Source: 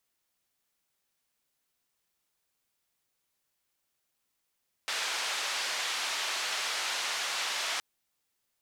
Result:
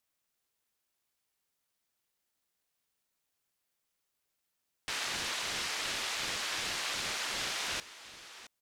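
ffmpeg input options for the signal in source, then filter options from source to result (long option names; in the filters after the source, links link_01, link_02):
-f lavfi -i "anoisesrc=color=white:duration=2.92:sample_rate=44100:seed=1,highpass=frequency=750,lowpass=frequency=4800,volume=-21.1dB"
-af "aecho=1:1:668:0.178,aeval=exprs='val(0)*sin(2*PI*430*n/s+430*0.6/2.7*sin(2*PI*2.7*n/s))':channel_layout=same"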